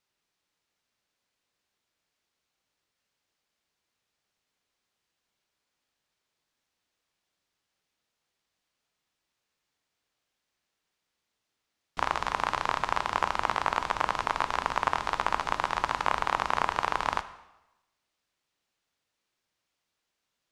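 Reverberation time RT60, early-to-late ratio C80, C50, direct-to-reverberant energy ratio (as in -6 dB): 0.95 s, 16.0 dB, 14.5 dB, 11.5 dB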